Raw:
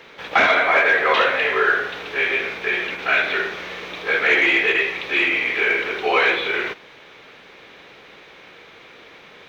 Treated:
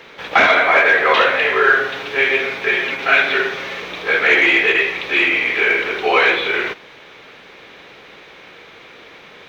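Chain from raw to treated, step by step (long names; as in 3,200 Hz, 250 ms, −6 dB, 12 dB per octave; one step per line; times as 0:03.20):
0:01.63–0:03.82: comb filter 7.4 ms, depth 59%
level +3.5 dB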